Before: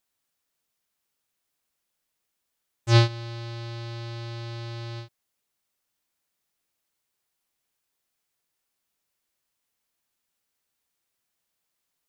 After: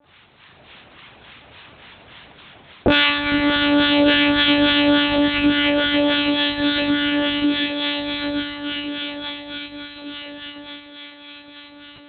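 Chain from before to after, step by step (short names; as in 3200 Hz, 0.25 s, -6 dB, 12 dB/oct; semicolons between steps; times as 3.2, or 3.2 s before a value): dynamic EQ 2300 Hz, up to +7 dB, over -43 dBFS, Q 0.78; AGC gain up to 7.5 dB; diffused feedback echo 1.267 s, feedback 41%, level -10 dB; harmonic tremolo 3.5 Hz, depth 100%, crossover 980 Hz; shoebox room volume 450 m³, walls mixed, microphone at 2.6 m; monotone LPC vocoder at 8 kHz 290 Hz; HPF 82 Hz 12 dB/oct; compressor 4:1, threshold -49 dBFS, peak gain reduction 28.5 dB; maximiser +34.5 dB; gain -1 dB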